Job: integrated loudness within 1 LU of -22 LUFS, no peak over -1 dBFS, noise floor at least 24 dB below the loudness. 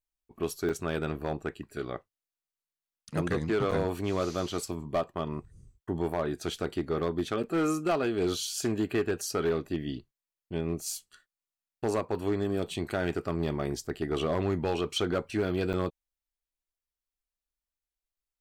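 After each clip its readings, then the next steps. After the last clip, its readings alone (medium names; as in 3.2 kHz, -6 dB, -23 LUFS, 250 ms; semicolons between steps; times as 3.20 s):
clipped samples 1.1%; clipping level -21.5 dBFS; dropouts 4; longest dropout 6.6 ms; loudness -31.5 LUFS; peak level -21.5 dBFS; loudness target -22.0 LUFS
-> clip repair -21.5 dBFS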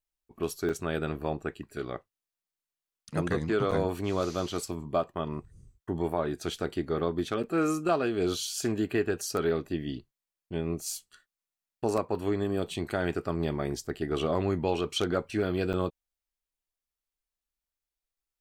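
clipped samples 0.0%; dropouts 4; longest dropout 6.6 ms
-> interpolate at 0.69/3.71/7.43/15.73 s, 6.6 ms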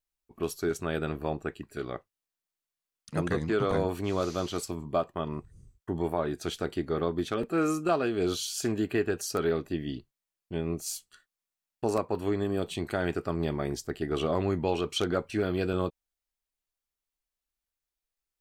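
dropouts 0; loudness -31.0 LUFS; peak level -14.0 dBFS; loudness target -22.0 LUFS
-> trim +9 dB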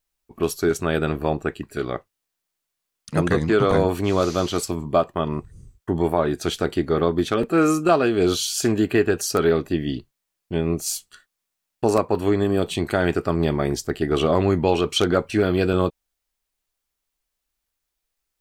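loudness -22.0 LUFS; peak level -5.0 dBFS; noise floor -81 dBFS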